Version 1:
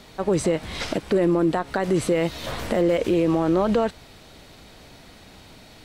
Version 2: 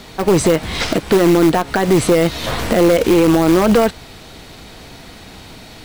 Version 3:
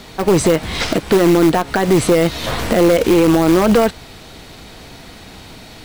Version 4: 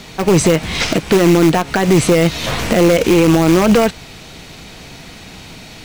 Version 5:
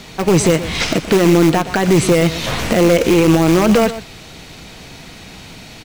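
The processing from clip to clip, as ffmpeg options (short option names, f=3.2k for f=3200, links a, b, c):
-filter_complex "[0:a]asplit=2[a][b];[b]aeval=exprs='(mod(5.62*val(0)+1,2)-1)/5.62':c=same,volume=-10.5dB[c];[a][c]amix=inputs=2:normalize=0,bandreject=f=580:w=12,acrusher=bits=6:mode=log:mix=0:aa=0.000001,volume=7.5dB"
-af anull
-af "equalizer=f=160:t=o:w=0.67:g=5,equalizer=f=2.5k:t=o:w=0.67:g=5,equalizer=f=6.3k:t=o:w=0.67:g=5"
-af "aecho=1:1:122:0.211,volume=-1dB"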